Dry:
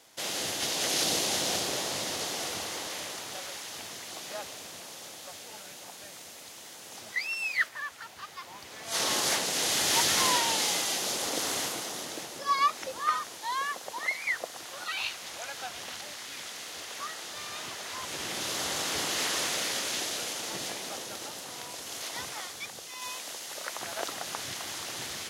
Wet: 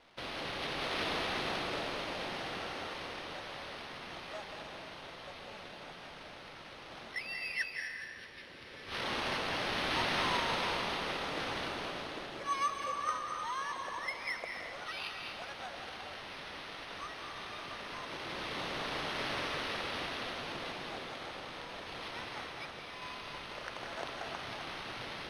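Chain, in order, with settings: spectral delete 7.14–9.04, 590–1500 Hz; in parallel at -2.5 dB: compressor, threshold -41 dBFS, peak gain reduction 19 dB; on the sum: sample-and-hold 6×; crackle 220/s -46 dBFS; air absorption 97 m; on a send at -2.5 dB: reverb RT60 1.7 s, pre-delay 0.164 s; on the sum: gain -8 dB

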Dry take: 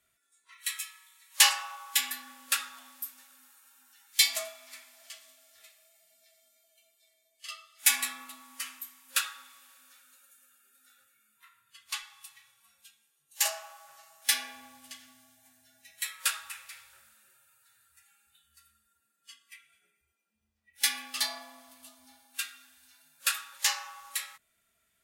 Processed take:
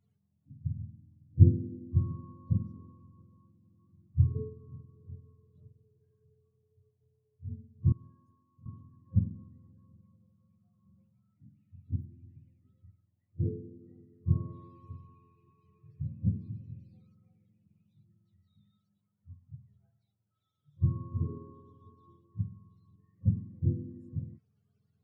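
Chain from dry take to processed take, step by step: spectrum mirrored in octaves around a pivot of 530 Hz; 7.92–8.66 pre-emphasis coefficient 0.9

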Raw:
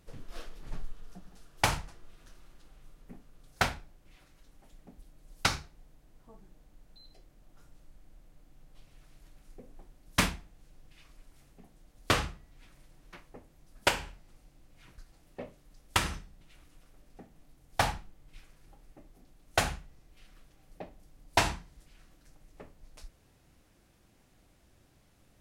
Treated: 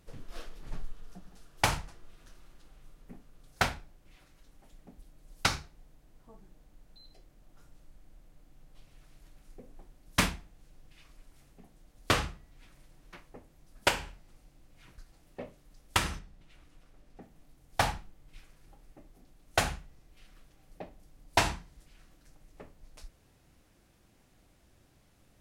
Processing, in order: 16.19–17.22 high shelf 7300 Hz -8.5 dB

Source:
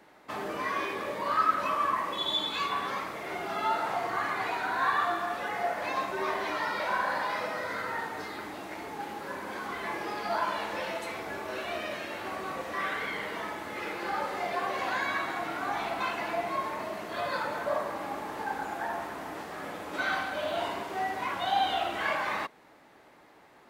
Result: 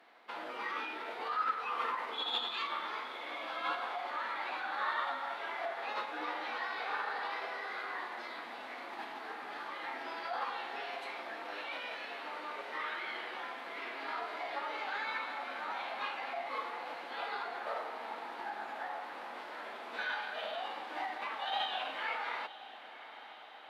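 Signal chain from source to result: Bessel high-pass 510 Hz, order 4; resonant high shelf 5200 Hz -9 dB, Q 1.5; in parallel at -0.5 dB: compressor, threshold -41 dBFS, peak gain reduction 19.5 dB; on the sum: formant-preserving pitch shift -4 st; diffused feedback echo 0.923 s, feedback 70%, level -15 dB; gain -8 dB

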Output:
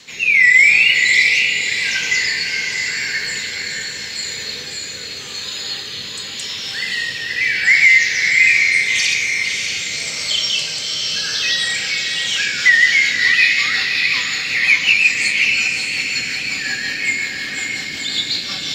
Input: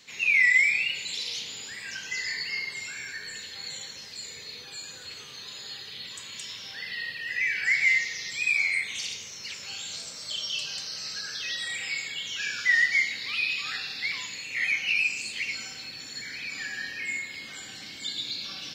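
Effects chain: rotary speaker horn 0.85 Hz, later 5.5 Hz, at 12.01; diffused feedback echo 0.601 s, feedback 42%, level -4 dB; maximiser +15.5 dB; gain -1 dB

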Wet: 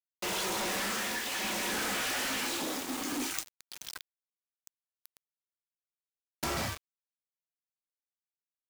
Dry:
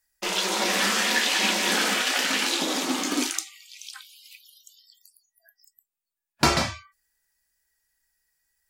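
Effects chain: dynamic EQ 4000 Hz, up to -5 dB, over -38 dBFS, Q 0.82; tremolo triangle 0.61 Hz, depth 75%; companded quantiser 2-bit; gain -7 dB

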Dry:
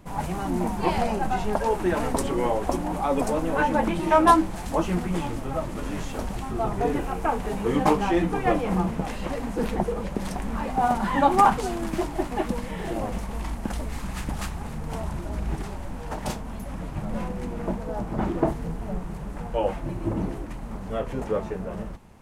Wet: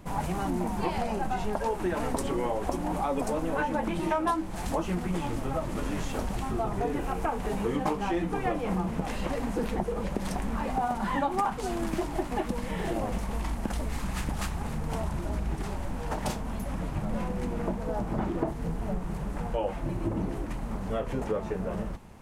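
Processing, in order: compressor 4:1, threshold -28 dBFS, peak gain reduction 14 dB; gain +1.5 dB

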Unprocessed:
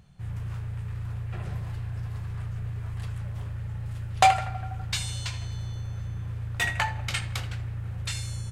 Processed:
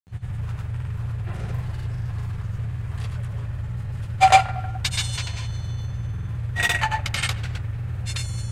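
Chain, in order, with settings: grains, pitch spread up and down by 0 st; gain +6 dB

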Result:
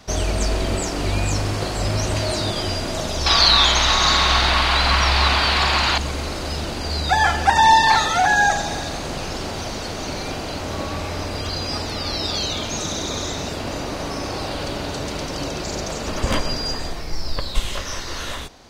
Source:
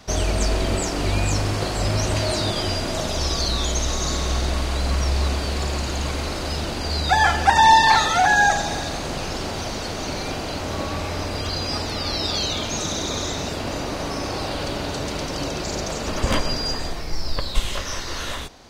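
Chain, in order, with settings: 3.26–5.98 band shelf 1900 Hz +14 dB 2.9 oct

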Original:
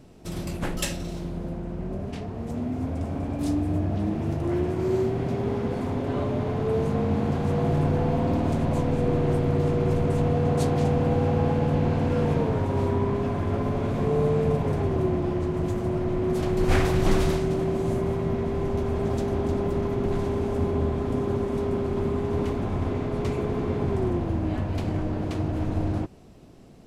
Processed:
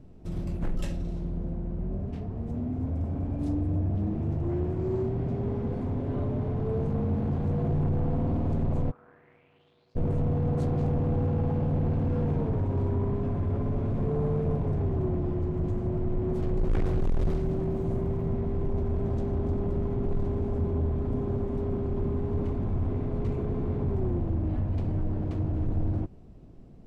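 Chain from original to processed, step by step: tilt -3 dB/oct; 17.3–18.35 crackle 180/s -45 dBFS; soft clip -12 dBFS, distortion -11 dB; 8.9–9.95 band-pass 1200 Hz -> 4800 Hz, Q 5.6; gain -8.5 dB

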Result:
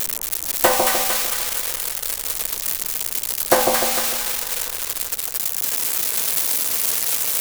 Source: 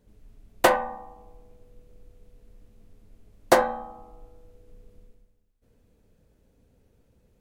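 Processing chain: switching spikes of -9 dBFS; split-band echo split 1100 Hz, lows 0.15 s, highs 0.227 s, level -3.5 dB; gain +1 dB

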